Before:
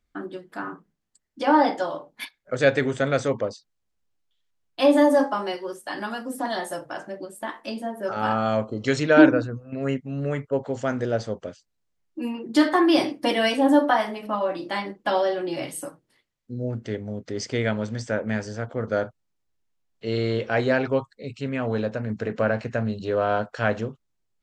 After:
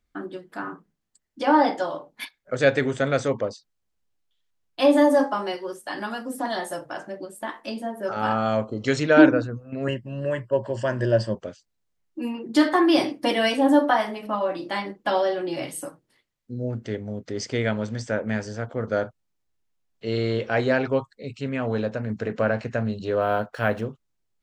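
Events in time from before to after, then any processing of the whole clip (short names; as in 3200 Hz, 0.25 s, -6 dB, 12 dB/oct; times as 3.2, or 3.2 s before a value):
9.87–11.35 ripple EQ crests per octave 1.3, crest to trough 14 dB
23.21–23.86 decimation joined by straight lines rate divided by 3×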